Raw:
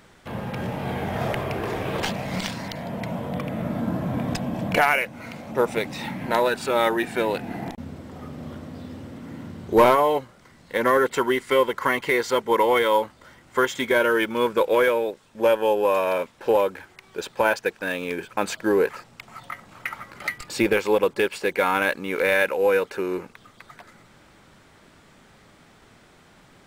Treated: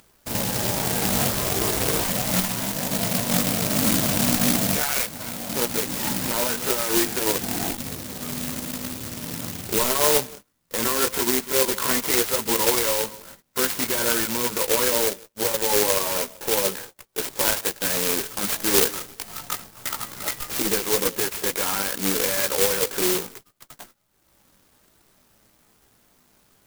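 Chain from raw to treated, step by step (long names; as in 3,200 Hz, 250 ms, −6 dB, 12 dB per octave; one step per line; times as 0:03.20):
dynamic equaliser 680 Hz, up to −5 dB, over −30 dBFS, Q 0.98
feedback echo with a low-pass in the loop 177 ms, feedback 34%, low-pass 1,200 Hz, level −24 dB
brickwall limiter −18.5 dBFS, peak gain reduction 10.5 dB
multi-voice chorus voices 4, 0.31 Hz, delay 18 ms, depth 2.6 ms
bad sample-rate conversion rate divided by 3×, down filtered, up zero stuff
0:17.31–0:19.39: bass and treble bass 0 dB, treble +3 dB
noise gate −43 dBFS, range −27 dB
upward compression, threshold −47 dBFS
converter with an unsteady clock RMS 0.092 ms
level +5.5 dB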